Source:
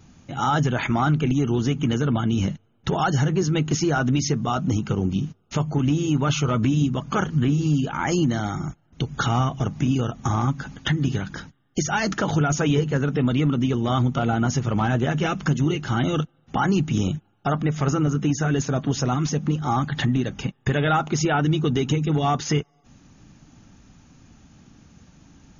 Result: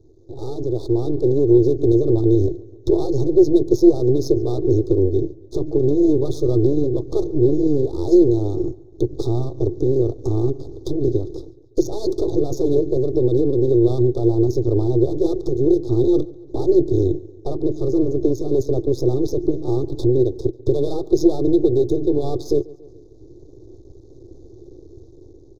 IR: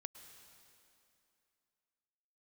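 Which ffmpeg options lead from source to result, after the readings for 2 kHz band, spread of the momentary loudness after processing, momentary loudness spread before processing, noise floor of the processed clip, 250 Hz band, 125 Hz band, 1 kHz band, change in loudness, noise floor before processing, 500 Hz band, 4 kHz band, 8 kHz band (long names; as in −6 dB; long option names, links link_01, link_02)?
below −40 dB, 10 LU, 7 LU, −45 dBFS, +4.5 dB, −1.5 dB, −13.0 dB, +4.0 dB, −62 dBFS, +11.0 dB, below −10 dB, can't be measured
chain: -filter_complex "[0:a]aecho=1:1:141|282|423|564:0.075|0.039|0.0203|0.0105,asplit=2[link_01][link_02];[link_02]adynamicsmooth=sensitivity=7:basefreq=2900,volume=1dB[link_03];[link_01][link_03]amix=inputs=2:normalize=0,alimiter=limit=-8.5dB:level=0:latency=1:release=309,aeval=exprs='max(val(0),0)':channel_layout=same,asuperstop=centerf=2100:order=20:qfactor=0.88,equalizer=frequency=1300:width_type=o:width=0.77:gain=3,dynaudnorm=framelen=170:gausssize=11:maxgain=8.5dB,firequalizer=gain_entry='entry(120,0);entry(190,-25);entry(350,13);entry(590,-6);entry(1100,-27);entry(2200,-11);entry(5000,-7);entry(7600,-13)':delay=0.05:min_phase=1,volume=-3dB"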